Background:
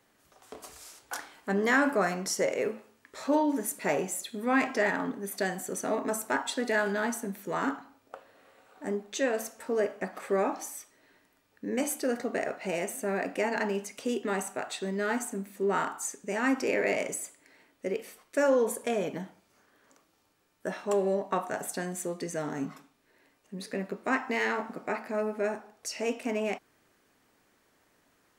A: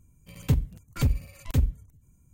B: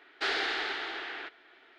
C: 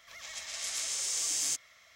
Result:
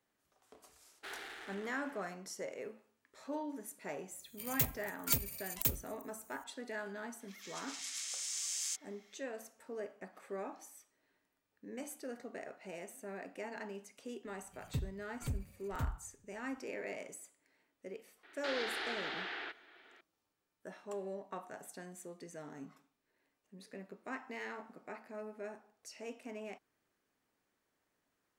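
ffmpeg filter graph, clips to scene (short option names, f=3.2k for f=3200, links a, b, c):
-filter_complex "[2:a]asplit=2[a][b];[1:a]asplit=2[c][d];[0:a]volume=-15dB[e];[a]adynamicsmooth=sensitivity=8:basefreq=710[f];[c]aemphasis=mode=production:type=riaa[g];[3:a]highpass=1.4k[h];[b]alimiter=level_in=4dB:limit=-24dB:level=0:latency=1:release=71,volume=-4dB[i];[f]atrim=end=1.78,asetpts=PTS-STARTPTS,volume=-16.5dB,afade=t=in:d=0.004:c=hsin,afade=t=out:st=1.776:d=0.004:c=hsin,adelay=820[j];[g]atrim=end=2.33,asetpts=PTS-STARTPTS,volume=-6dB,afade=t=in:d=0.004:c=hsin,afade=t=out:st=2.326:d=0.004:c=hsin,adelay=4110[k];[h]atrim=end=1.95,asetpts=PTS-STARTPTS,volume=-7dB,afade=t=in:d=0.004:c=hsin,afade=t=out:st=1.946:d=0.004:c=hsin,adelay=7200[l];[d]atrim=end=2.33,asetpts=PTS-STARTPTS,volume=-15dB,afade=t=in:d=0.004:c=hsin,afade=t=out:st=2.326:d=0.004:c=hsin,adelay=14250[m];[i]atrim=end=1.78,asetpts=PTS-STARTPTS,volume=-3dB,afade=t=in:d=0.004:c=hsin,afade=t=out:st=1.776:d=0.004:c=hsin,adelay=18230[n];[e][j][k][l][m][n]amix=inputs=6:normalize=0"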